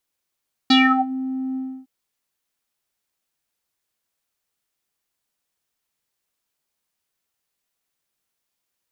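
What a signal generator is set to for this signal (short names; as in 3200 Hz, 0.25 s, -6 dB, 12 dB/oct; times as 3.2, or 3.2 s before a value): synth note square C4 12 dB/oct, low-pass 400 Hz, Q 8.2, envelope 3.5 oct, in 0.42 s, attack 7 ms, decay 0.35 s, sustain -16 dB, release 0.30 s, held 0.86 s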